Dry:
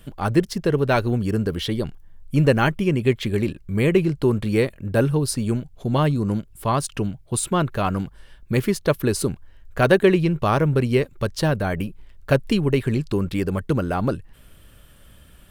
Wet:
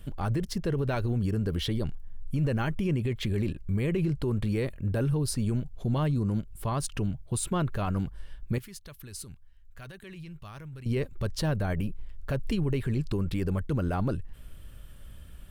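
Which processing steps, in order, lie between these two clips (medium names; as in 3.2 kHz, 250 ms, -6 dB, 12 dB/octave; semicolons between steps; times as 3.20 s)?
bass shelf 110 Hz +11.5 dB; peak limiter -15.5 dBFS, peak gain reduction 14 dB; 8.58–10.86 s: amplifier tone stack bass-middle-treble 5-5-5; trim -5 dB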